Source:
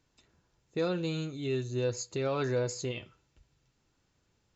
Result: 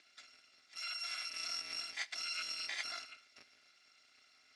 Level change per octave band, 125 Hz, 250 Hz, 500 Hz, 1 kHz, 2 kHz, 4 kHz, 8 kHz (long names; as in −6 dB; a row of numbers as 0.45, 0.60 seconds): below −40 dB, −34.0 dB, −31.5 dB, −8.0 dB, +1.0 dB, +4.5 dB, can't be measured